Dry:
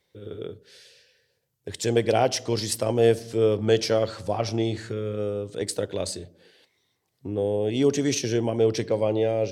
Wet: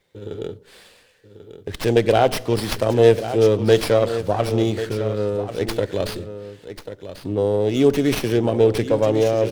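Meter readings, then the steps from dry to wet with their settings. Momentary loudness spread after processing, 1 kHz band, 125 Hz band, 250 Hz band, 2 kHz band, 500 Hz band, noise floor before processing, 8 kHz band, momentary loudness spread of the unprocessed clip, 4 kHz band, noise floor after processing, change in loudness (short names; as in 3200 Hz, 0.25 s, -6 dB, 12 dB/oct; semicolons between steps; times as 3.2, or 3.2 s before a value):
19 LU, +6.0 dB, +5.5 dB, +5.5 dB, +6.0 dB, +5.5 dB, -74 dBFS, -3.0 dB, 16 LU, +2.5 dB, -52 dBFS, +5.5 dB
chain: echo 1.09 s -11.5 dB; running maximum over 5 samples; gain +5.5 dB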